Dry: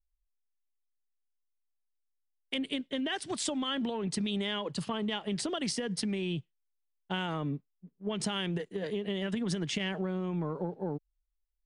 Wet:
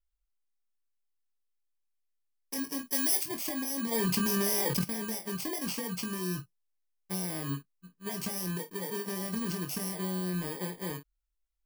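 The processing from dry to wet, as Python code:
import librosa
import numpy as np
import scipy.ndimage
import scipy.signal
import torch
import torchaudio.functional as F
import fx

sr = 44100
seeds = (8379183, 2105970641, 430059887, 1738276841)

p1 = fx.bit_reversed(x, sr, seeds[0], block=32)
p2 = fx.high_shelf(p1, sr, hz=2100.0, db=11.5, at=(2.86, 3.27))
p3 = np.clip(p2, -10.0 ** (-26.5 / 20.0), 10.0 ** (-26.5 / 20.0))
p4 = p2 + F.gain(torch.from_numpy(p3), -3.0).numpy()
p5 = fx.room_early_taps(p4, sr, ms=(22, 50), db=(-6.5, -13.5))
p6 = fx.env_flatten(p5, sr, amount_pct=70, at=(3.91, 4.83), fade=0.02)
y = F.gain(torch.from_numpy(p6), -7.0).numpy()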